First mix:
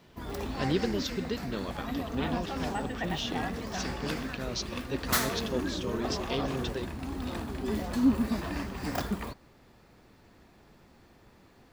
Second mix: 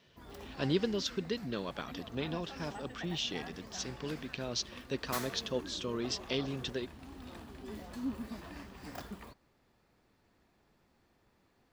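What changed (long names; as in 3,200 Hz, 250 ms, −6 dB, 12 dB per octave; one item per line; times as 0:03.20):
background −11.5 dB
master: add low-shelf EQ 420 Hz −2.5 dB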